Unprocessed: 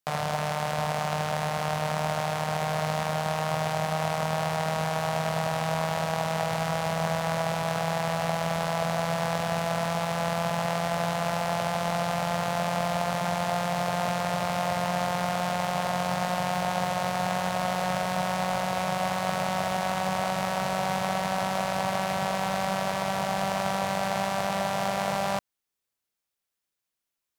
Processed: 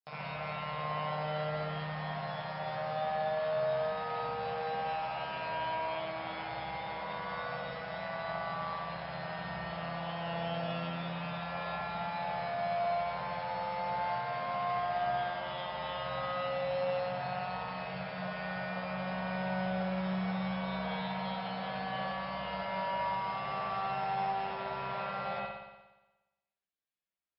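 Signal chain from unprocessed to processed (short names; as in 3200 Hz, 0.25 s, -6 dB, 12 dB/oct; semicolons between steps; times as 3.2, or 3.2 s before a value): metallic resonator 64 Hz, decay 0.28 s, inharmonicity 0.002; spring tank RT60 1.1 s, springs 59 ms, chirp 35 ms, DRR -6.5 dB; gain -7 dB; MP3 64 kbps 12000 Hz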